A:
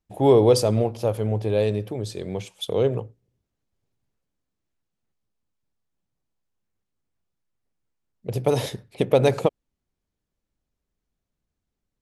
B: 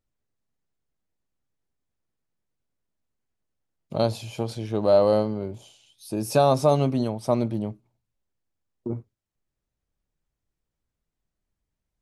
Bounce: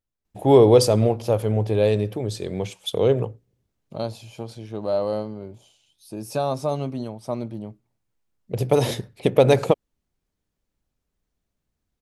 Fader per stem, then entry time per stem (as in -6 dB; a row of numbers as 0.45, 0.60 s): +2.5, -5.5 dB; 0.25, 0.00 s